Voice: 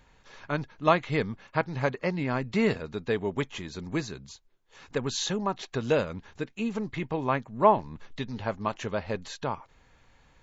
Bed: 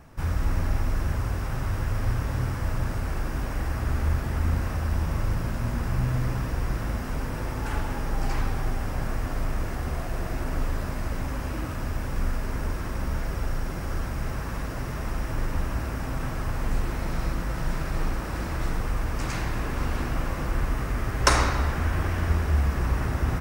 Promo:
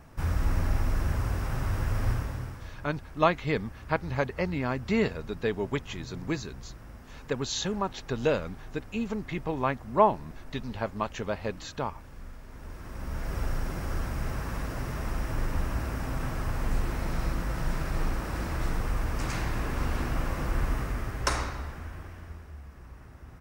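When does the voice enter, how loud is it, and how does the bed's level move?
2.35 s, -1.0 dB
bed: 2.11 s -1.5 dB
2.77 s -17.5 dB
12.46 s -17.5 dB
13.38 s -2 dB
20.74 s -2 dB
22.59 s -22.5 dB

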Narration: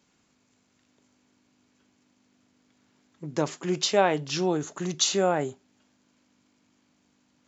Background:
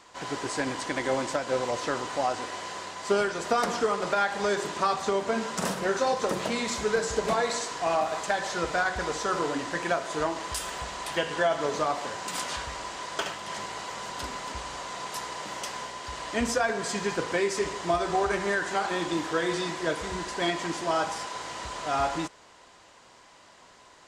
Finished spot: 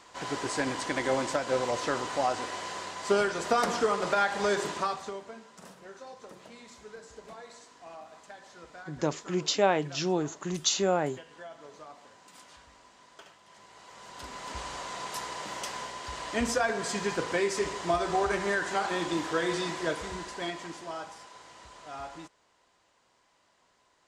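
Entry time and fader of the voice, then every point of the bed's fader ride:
5.65 s, -2.5 dB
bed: 4.7 s -0.5 dB
5.44 s -20.5 dB
13.53 s -20.5 dB
14.6 s -1.5 dB
19.81 s -1.5 dB
21.17 s -14 dB

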